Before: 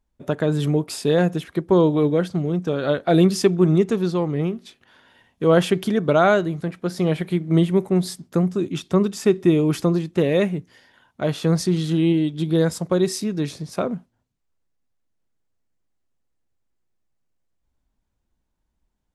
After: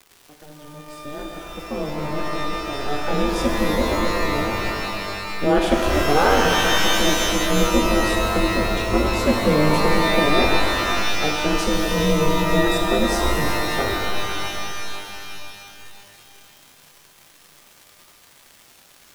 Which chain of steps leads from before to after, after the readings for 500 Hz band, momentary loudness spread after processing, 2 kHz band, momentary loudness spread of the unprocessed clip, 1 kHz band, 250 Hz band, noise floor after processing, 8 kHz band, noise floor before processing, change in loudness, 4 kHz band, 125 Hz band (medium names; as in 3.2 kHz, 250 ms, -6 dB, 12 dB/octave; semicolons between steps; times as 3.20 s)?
-1.5 dB, 15 LU, +9.5 dB, 10 LU, +7.5 dB, -3.0 dB, -52 dBFS, +7.0 dB, -75 dBFS, +0.5 dB, +10.0 dB, -5.0 dB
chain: fade-in on the opening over 5.67 s; ring modulator 150 Hz; crackle 280 per s -36 dBFS; pitch-shifted reverb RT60 2.9 s, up +12 st, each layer -2 dB, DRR 1 dB